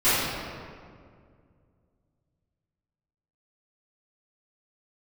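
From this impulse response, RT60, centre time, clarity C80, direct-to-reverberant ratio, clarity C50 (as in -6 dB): 2.1 s, 0.136 s, -0.5 dB, -18.0 dB, -3.5 dB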